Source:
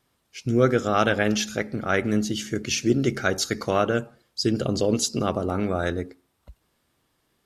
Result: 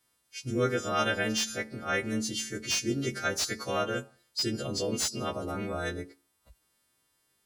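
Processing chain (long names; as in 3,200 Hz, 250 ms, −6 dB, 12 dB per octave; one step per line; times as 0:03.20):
every partial snapped to a pitch grid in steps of 2 semitones
slew-rate limiting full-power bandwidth 690 Hz
level −8 dB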